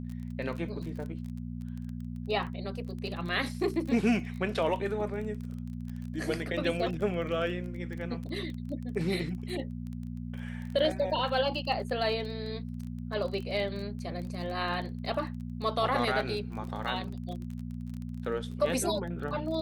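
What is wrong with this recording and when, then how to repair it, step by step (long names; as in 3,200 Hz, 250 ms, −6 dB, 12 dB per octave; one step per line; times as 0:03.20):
surface crackle 22 per second −37 dBFS
mains hum 60 Hz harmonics 4 −38 dBFS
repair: click removal
hum removal 60 Hz, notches 4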